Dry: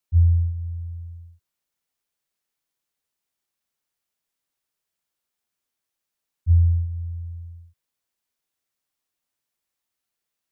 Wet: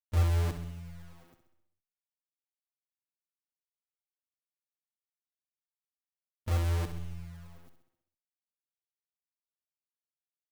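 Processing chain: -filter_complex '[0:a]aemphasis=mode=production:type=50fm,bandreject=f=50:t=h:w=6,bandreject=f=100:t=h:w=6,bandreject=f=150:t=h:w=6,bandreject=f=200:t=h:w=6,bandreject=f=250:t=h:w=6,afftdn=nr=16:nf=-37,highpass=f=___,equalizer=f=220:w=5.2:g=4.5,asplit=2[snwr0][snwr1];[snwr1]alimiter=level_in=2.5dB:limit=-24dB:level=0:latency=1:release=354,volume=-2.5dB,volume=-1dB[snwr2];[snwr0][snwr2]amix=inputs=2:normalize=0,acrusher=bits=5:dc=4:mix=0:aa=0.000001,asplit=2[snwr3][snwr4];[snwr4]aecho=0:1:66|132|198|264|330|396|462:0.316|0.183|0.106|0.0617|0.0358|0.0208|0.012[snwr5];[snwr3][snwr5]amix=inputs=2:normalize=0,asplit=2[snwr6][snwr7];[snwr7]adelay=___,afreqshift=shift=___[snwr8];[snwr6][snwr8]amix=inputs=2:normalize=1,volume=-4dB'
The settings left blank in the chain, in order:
100, 6, -0.61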